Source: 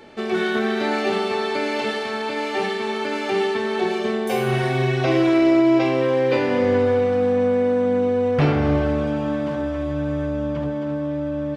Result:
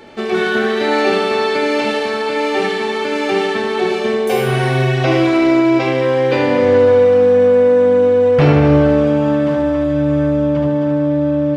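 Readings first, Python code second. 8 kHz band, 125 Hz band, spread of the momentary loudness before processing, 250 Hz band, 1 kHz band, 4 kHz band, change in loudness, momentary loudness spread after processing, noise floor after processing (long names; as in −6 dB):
can't be measured, +7.5 dB, 8 LU, +5.5 dB, +5.5 dB, +6.0 dB, +7.0 dB, 7 LU, −19 dBFS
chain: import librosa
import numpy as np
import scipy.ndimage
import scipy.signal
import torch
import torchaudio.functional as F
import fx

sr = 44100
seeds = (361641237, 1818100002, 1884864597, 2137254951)

y = fx.echo_feedback(x, sr, ms=75, feedback_pct=47, wet_db=-7.0)
y = F.gain(torch.from_numpy(y), 5.0).numpy()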